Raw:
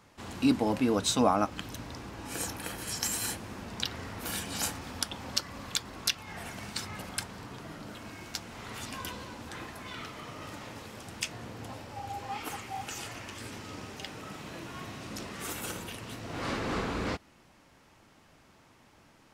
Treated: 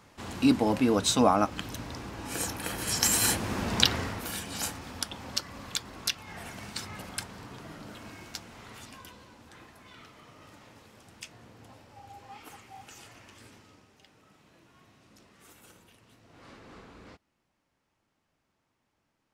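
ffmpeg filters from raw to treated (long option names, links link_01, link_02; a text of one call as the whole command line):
ffmpeg -i in.wav -af "volume=11.5dB,afade=type=in:start_time=2.59:duration=1.22:silence=0.354813,afade=type=out:start_time=3.81:duration=0.47:silence=0.237137,afade=type=out:start_time=8.09:duration=0.98:silence=0.354813,afade=type=out:start_time=13.43:duration=0.42:silence=0.398107" out.wav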